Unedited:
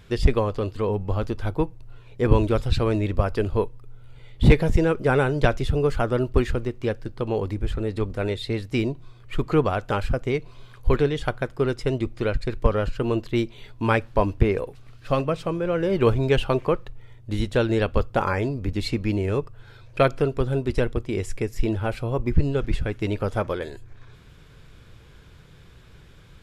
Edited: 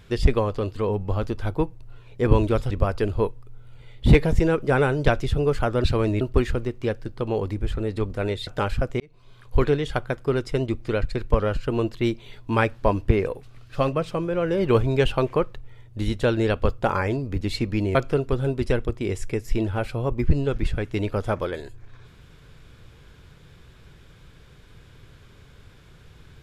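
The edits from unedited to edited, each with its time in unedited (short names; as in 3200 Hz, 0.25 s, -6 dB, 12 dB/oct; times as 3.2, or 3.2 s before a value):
2.71–3.08 move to 6.21
8.47–9.79 cut
10.32–10.9 fade in
19.27–20.03 cut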